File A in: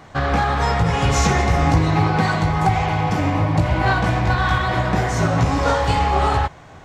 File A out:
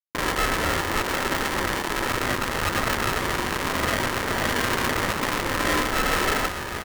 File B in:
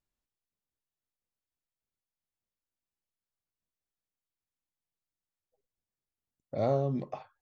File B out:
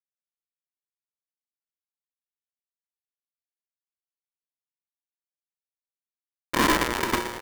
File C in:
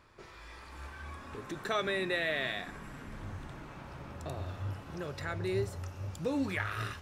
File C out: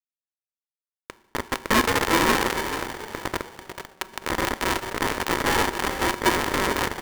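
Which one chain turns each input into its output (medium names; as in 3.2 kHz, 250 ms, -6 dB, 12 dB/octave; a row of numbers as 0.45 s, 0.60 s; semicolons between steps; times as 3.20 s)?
median filter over 25 samples; waveshaping leveller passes 3; in parallel at -1 dB: peak limiter -14 dBFS; on the sum: frequency shift -200 Hz; Schmitt trigger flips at -20.5 dBFS; cabinet simulation 400–2000 Hz, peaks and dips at 500 Hz -8 dB, 820 Hz -6 dB, 1.2 kHz +3 dB, 1.8 kHz -9 dB; on a send: frequency-shifting echo 441 ms, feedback 34%, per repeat -50 Hz, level -9 dB; on the sum: FDN reverb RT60 1 s, low-frequency decay 0.95×, high-frequency decay 1×, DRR 13.5 dB; polarity switched at an audio rate 660 Hz; normalise loudness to -24 LUFS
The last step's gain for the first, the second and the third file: -8.0 dB, +17.0 dB, +15.0 dB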